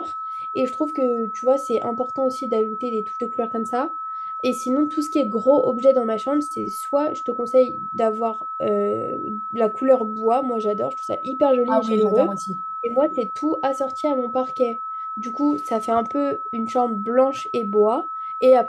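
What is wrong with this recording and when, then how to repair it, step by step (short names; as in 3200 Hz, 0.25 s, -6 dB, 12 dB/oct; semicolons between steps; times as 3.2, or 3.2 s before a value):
tone 1300 Hz -27 dBFS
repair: notch 1300 Hz, Q 30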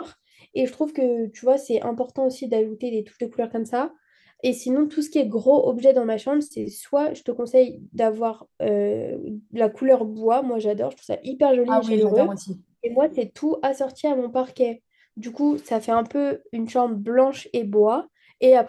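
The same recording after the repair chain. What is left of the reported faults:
none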